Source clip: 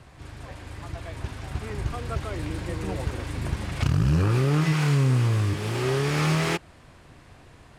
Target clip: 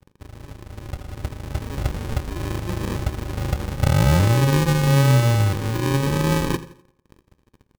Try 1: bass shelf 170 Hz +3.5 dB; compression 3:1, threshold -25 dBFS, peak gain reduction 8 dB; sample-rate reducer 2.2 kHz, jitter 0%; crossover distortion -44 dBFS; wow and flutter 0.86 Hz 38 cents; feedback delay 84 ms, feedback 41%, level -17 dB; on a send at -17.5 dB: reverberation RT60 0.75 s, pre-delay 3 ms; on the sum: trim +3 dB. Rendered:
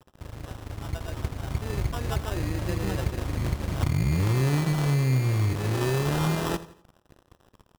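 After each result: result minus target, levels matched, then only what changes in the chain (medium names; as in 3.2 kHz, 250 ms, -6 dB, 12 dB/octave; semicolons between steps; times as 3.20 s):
compression: peak gain reduction +8 dB; sample-rate reducer: distortion -7 dB
remove: compression 3:1, threshold -25 dBFS, peak gain reduction 8 dB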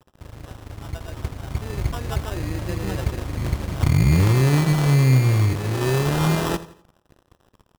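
sample-rate reducer: distortion -8 dB
change: sample-rate reducer 690 Hz, jitter 0%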